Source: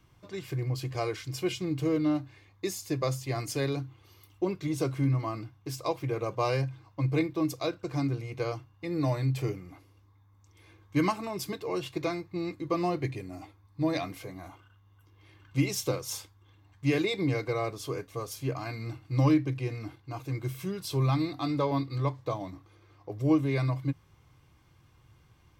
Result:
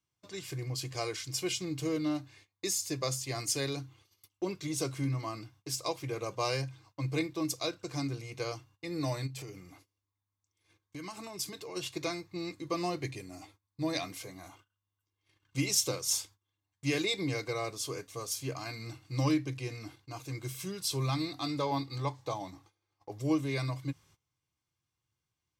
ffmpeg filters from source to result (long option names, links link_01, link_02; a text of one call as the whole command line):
ffmpeg -i in.wav -filter_complex "[0:a]asplit=3[link_01][link_02][link_03];[link_01]afade=type=out:start_time=9.26:duration=0.02[link_04];[link_02]acompressor=threshold=-35dB:ratio=6:attack=3.2:release=140:knee=1:detection=peak,afade=type=in:start_time=9.26:duration=0.02,afade=type=out:start_time=11.75:duration=0.02[link_05];[link_03]afade=type=in:start_time=11.75:duration=0.02[link_06];[link_04][link_05][link_06]amix=inputs=3:normalize=0,asettb=1/sr,asplit=3[link_07][link_08][link_09];[link_07]atrim=end=21.664[link_10];[link_08]atrim=start=21.66:end=23.2,asetpts=PTS-STARTPTS,afade=type=in:duration=0.004:curve=qsin,afade=type=out:start_time=1.536:duration=0.004:curve=qsin,equalizer=frequency=830:width=6.8:gain=10[link_11];[link_09]atrim=start=23.196[link_12];[link_10][link_11]acrossfade=duration=0.004:curve1=hsin:curve2=qsin[link_13];[link_13][link_12]acrossfade=duration=0.004:curve1=qsin:curve2=hsin,highpass=frequency=81:poles=1,agate=range=-21dB:threshold=-55dB:ratio=16:detection=peak,equalizer=frequency=7300:width_type=o:width=2.2:gain=13,volume=-5dB" out.wav